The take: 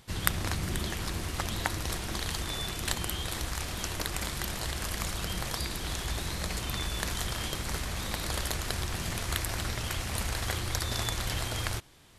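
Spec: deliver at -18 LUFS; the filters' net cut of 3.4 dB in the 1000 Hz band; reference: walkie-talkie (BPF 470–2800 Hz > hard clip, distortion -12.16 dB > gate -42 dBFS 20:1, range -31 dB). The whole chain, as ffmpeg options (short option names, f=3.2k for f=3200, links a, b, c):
-af "highpass=470,lowpass=2.8k,equalizer=f=1k:t=o:g=-4,asoftclip=type=hard:threshold=-27.5dB,agate=range=-31dB:threshold=-42dB:ratio=20,volume=22.5dB"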